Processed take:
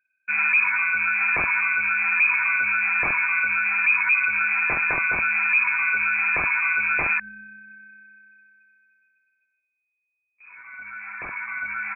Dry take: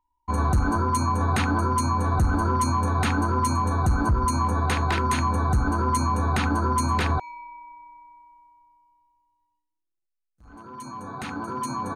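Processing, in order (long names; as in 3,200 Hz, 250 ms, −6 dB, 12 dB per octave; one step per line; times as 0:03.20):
0:07.29–0:07.70: parametric band 490 Hz −12 dB 0.77 octaves
voice inversion scrambler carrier 2,500 Hz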